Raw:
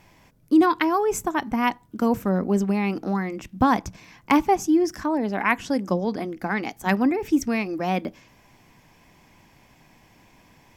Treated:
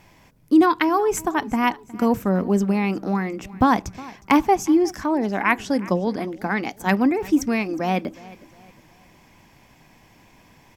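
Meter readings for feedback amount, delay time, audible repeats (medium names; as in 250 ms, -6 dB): 40%, 362 ms, 2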